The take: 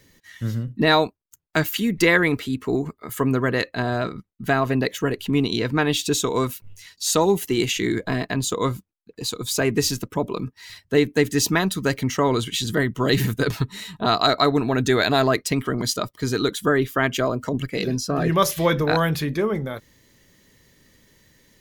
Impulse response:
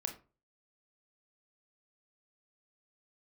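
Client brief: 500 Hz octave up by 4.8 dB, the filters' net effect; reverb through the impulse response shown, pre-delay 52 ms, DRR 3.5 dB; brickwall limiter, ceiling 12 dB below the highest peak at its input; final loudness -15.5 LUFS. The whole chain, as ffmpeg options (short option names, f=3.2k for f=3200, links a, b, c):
-filter_complex "[0:a]equalizer=f=500:t=o:g=6,alimiter=limit=-14dB:level=0:latency=1,asplit=2[a][b];[1:a]atrim=start_sample=2205,adelay=52[c];[b][c]afir=irnorm=-1:irlink=0,volume=-3.5dB[d];[a][d]amix=inputs=2:normalize=0,volume=7.5dB"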